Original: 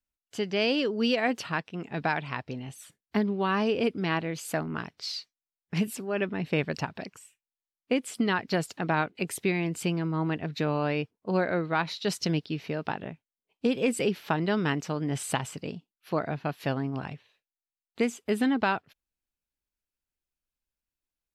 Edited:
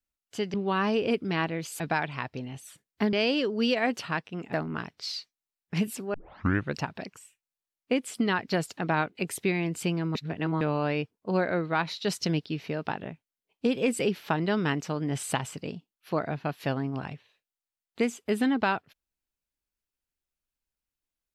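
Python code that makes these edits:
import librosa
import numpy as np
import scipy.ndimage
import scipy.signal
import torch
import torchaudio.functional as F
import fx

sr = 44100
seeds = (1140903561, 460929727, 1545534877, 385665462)

y = fx.edit(x, sr, fx.swap(start_s=0.54, length_s=1.4, other_s=3.27, other_length_s=1.26),
    fx.tape_start(start_s=6.14, length_s=0.62),
    fx.reverse_span(start_s=10.15, length_s=0.46), tone=tone)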